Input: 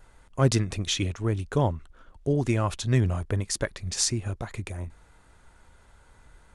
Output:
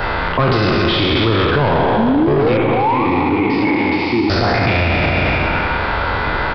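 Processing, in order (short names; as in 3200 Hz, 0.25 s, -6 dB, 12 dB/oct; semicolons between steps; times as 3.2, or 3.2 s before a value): spectral trails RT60 1.84 s; low shelf 170 Hz +9.5 dB; 1.97–3.06 painted sound rise 210–1200 Hz -23 dBFS; overdrive pedal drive 30 dB, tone 1900 Hz, clips at -1 dBFS; downsampling 11025 Hz; 2.57–4.3 vowel filter u; spring tank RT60 1.8 s, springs 35/47 ms, chirp 75 ms, DRR 6 dB; maximiser +22 dB; three-band squash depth 40%; gain -7 dB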